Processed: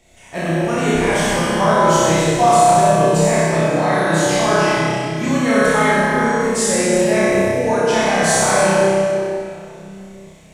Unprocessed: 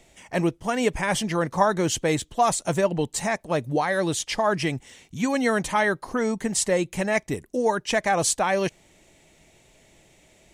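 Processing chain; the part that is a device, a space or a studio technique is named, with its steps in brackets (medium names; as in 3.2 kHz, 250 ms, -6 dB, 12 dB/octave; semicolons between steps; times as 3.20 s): tunnel (flutter echo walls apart 5.3 m, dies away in 0.88 s; reverberation RT60 2.8 s, pre-delay 14 ms, DRR -6.5 dB); trim -2.5 dB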